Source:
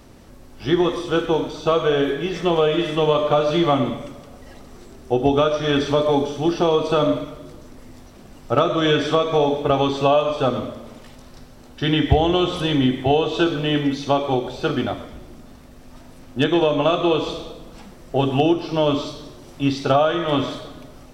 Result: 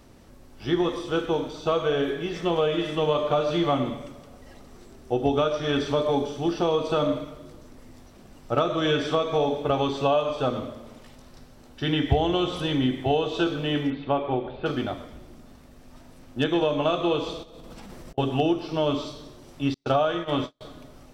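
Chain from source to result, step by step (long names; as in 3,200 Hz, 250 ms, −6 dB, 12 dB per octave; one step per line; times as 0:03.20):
0:13.90–0:14.66: inverse Chebyshev low-pass filter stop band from 7,000 Hz, stop band 50 dB
0:17.43–0:18.18: compressor whose output falls as the input rises −42 dBFS, ratio −1
0:19.74–0:20.61: noise gate −22 dBFS, range −41 dB
level −5.5 dB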